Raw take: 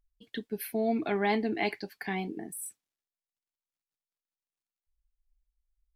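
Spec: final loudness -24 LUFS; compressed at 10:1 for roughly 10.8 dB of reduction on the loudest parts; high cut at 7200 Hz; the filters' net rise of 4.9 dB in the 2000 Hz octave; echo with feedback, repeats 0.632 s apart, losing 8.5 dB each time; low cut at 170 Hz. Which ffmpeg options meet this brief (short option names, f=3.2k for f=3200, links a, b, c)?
-af "highpass=170,lowpass=7.2k,equalizer=f=2k:t=o:g=5.5,acompressor=threshold=-33dB:ratio=10,aecho=1:1:632|1264|1896|2528:0.376|0.143|0.0543|0.0206,volume=14.5dB"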